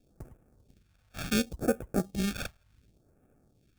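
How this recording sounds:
aliases and images of a low sample rate 1,000 Hz, jitter 0%
phaser sweep stages 2, 0.69 Hz, lowest notch 320–4,000 Hz

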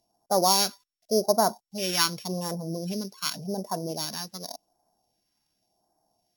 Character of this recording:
a buzz of ramps at a fixed pitch in blocks of 8 samples
phaser sweep stages 2, 0.88 Hz, lowest notch 640–2,600 Hz
Ogg Vorbis

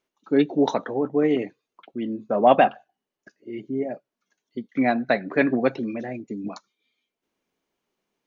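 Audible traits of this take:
background noise floor −86 dBFS
spectral slope −2.0 dB per octave

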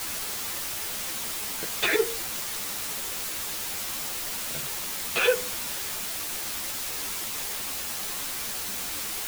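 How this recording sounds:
tremolo saw down 0.65 Hz, depth 80%
a quantiser's noise floor 6 bits, dither triangular
a shimmering, thickened sound

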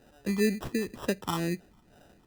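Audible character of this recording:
phaser sweep stages 6, 2.1 Hz, lowest notch 550–2,900 Hz
aliases and images of a low sample rate 2,200 Hz, jitter 0%

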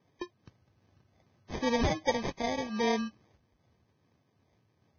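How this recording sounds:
phaser sweep stages 4, 2.5 Hz, lowest notch 450–2,000 Hz
aliases and images of a low sample rate 1,400 Hz, jitter 0%
Ogg Vorbis

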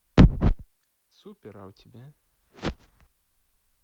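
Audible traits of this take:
a quantiser's noise floor 12 bits, dither triangular
Opus

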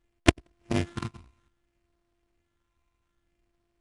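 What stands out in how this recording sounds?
a buzz of ramps at a fixed pitch in blocks of 128 samples
phaser sweep stages 8, 0.61 Hz, lowest notch 500–1,800 Hz
aliases and images of a low sample rate 4,900 Hz, jitter 20%
IMA ADPCM

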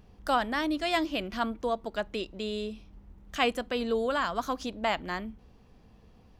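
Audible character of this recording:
background noise floor −58 dBFS
spectral slope −2.0 dB per octave

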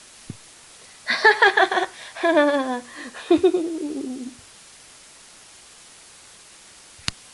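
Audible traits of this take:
a quantiser's noise floor 8 bits, dither triangular
MP3

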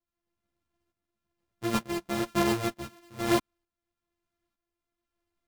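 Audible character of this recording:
a buzz of ramps at a fixed pitch in blocks of 128 samples
tremolo saw up 1.1 Hz, depth 65%
a shimmering, thickened sound

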